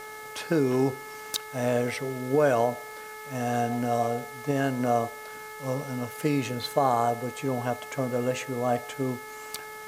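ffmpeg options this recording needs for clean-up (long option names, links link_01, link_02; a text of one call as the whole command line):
ffmpeg -i in.wav -af "adeclick=threshold=4,bandreject=frequency=430.1:width_type=h:width=4,bandreject=frequency=860.2:width_type=h:width=4,bandreject=frequency=1290.3:width_type=h:width=4,bandreject=frequency=1720.4:width_type=h:width=4,bandreject=frequency=2150.5:width_type=h:width=4,bandreject=frequency=1200:width=30,afwtdn=0.0035" out.wav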